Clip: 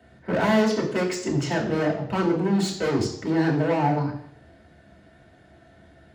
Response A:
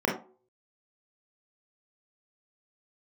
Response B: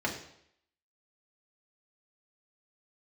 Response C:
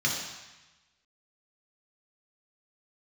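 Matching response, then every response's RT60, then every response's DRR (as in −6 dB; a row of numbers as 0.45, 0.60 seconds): B; non-exponential decay, 0.70 s, 1.1 s; −2.5, −2.5, −3.0 decibels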